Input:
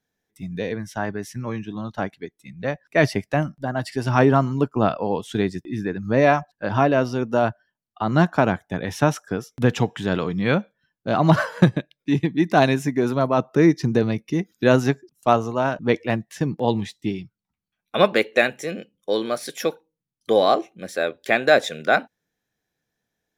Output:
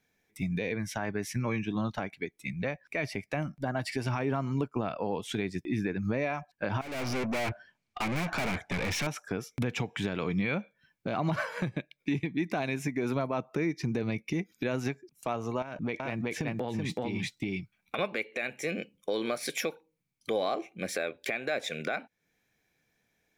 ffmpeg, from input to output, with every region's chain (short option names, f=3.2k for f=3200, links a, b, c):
-filter_complex "[0:a]asettb=1/sr,asplit=3[a][b][c];[a]atrim=end=6.814[d];[b]atrim=start=6.81:end=9.07,asetpts=PTS-STARTPTS,afade=t=in:d=0.004:c=qsin,afade=t=out:st=2.256:d=0.004:c=qsin,lowpass=6.5k,acontrast=76,aeval=exprs='(tanh(39.8*val(0)+0.2)-tanh(0.2))/39.8':c=same[e];[c]atrim=start=9.066[f];[d][e]acrossfade=d=0.004:c1=hsin:c2=qsin[g];[g][f]acrossfade=d=0.004:c1=qsin:c2=hsin,asettb=1/sr,asplit=3[h][i][j];[h]atrim=end=15.624[k];[i]atrim=start=15.62:end=17.99,asetpts=PTS-STARTPTS,afade=t=in:d=0.004:c=qsin,afade=t=out:st=2.366:d=0.004:c=qsin,aecho=1:1:378:0.631,atrim=end_sample=104517,acompressor=threshold=-29dB:ratio=16:attack=3.2:release=140:knee=1:detection=peak[l];[j]atrim=start=17.986[m];[k][l]acrossfade=d=0.004:c1=hsin:c2=qsin[n];[n][m]acrossfade=d=0.004:c1=qsin:c2=hsin,equalizer=f=2.3k:w=5.9:g=13,acompressor=threshold=-33dB:ratio=2.5,alimiter=limit=-23.5dB:level=0:latency=1:release=122,volume=3.5dB"